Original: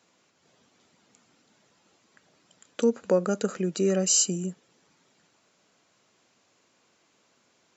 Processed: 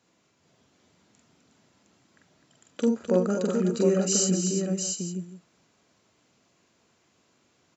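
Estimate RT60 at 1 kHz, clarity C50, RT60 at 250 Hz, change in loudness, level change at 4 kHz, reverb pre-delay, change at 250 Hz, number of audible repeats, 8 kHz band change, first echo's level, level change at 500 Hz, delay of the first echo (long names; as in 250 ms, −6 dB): no reverb audible, no reverb audible, no reverb audible, 0.0 dB, −1.0 dB, no reverb audible, +4.0 dB, 5, can't be measured, −2.0 dB, +1.0 dB, 44 ms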